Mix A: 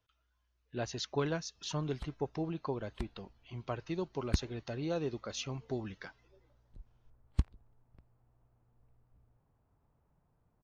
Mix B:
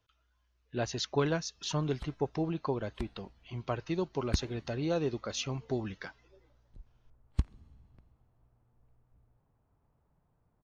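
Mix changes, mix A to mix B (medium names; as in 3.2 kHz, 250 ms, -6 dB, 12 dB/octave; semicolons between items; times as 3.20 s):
speech +4.0 dB; reverb: on, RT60 2.6 s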